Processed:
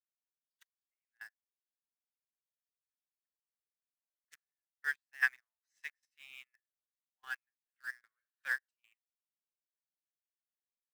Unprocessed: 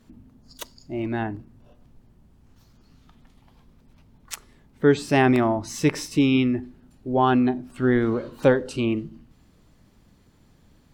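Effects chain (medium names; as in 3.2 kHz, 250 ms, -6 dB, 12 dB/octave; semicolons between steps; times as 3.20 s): ladder high-pass 1.6 kHz, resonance 75%; Chebyshev shaper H 5 -32 dB, 7 -30 dB, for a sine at -16 dBFS; trance gate "xxxxx.x..x..xx." 112 bpm -12 dB; in parallel at -12 dB: companded quantiser 2-bit; on the sum: upward expansion 2.5:1, over -50 dBFS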